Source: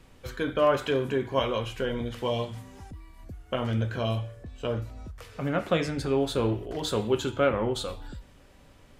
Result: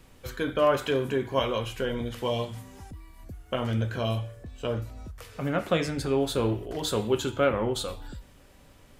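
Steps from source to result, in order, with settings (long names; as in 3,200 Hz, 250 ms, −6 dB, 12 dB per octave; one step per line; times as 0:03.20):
high-shelf EQ 9,300 Hz +9 dB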